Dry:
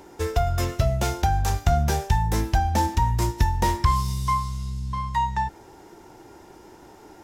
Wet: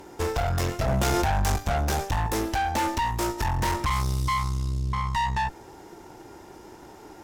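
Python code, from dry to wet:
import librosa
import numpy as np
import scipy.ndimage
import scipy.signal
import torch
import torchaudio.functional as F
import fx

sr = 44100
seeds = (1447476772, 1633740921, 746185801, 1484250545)

y = fx.low_shelf_res(x, sr, hz=220.0, db=-8.5, q=1.5, at=(2.26, 3.45))
y = fx.tube_stage(y, sr, drive_db=29.0, bias=0.8)
y = fx.env_flatten(y, sr, amount_pct=100, at=(0.88, 1.56))
y = y * 10.0 ** (6.5 / 20.0)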